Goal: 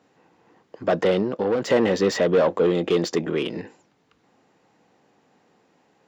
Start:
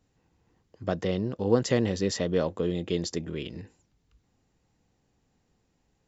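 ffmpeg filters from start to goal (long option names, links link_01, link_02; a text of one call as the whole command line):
ffmpeg -i in.wav -filter_complex "[0:a]asplit=2[link_01][link_02];[link_02]highpass=frequency=720:poles=1,volume=25dB,asoftclip=type=tanh:threshold=-8.5dB[link_03];[link_01][link_03]amix=inputs=2:normalize=0,lowpass=frequency=1100:poles=1,volume=-6dB,asettb=1/sr,asplit=3[link_04][link_05][link_06];[link_04]atrim=end=1.224[link_07];[link_05]atrim=start=1.22:end=1.7,asetpts=PTS-STARTPTS,afade=type=in:duration=0.004:curve=qsin,afade=type=out:start_time=0.476:duration=0.004:curve=qsin,acompressor=threshold=-24dB:ratio=2[link_08];[link_06]atrim=start=1.696[link_09];[link_07][link_08]acrossfade=duration=0.004:curve1=hsin:curve2=qsin[link_10];[link_10][link_09]acrossfade=duration=0.004:curve1=qsin:curve2=hsin,highpass=150,volume=1dB" out.wav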